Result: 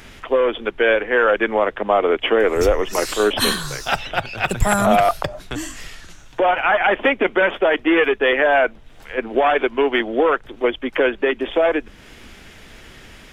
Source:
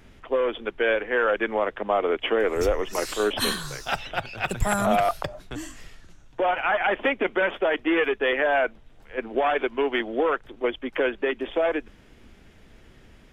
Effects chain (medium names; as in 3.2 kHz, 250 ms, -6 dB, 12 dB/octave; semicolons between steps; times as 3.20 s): tape noise reduction on one side only encoder only; trim +6.5 dB